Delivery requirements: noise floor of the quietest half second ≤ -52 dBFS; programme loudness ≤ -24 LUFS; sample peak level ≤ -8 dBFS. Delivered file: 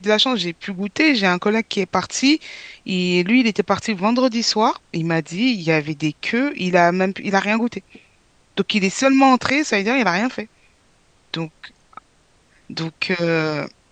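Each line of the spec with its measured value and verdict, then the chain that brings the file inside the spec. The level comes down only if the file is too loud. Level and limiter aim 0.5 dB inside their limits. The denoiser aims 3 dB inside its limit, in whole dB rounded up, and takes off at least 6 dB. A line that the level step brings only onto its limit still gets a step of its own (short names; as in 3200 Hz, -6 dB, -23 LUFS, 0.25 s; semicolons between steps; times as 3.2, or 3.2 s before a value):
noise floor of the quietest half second -57 dBFS: OK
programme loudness -19.0 LUFS: fail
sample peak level -1.5 dBFS: fail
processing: gain -5.5 dB; limiter -8.5 dBFS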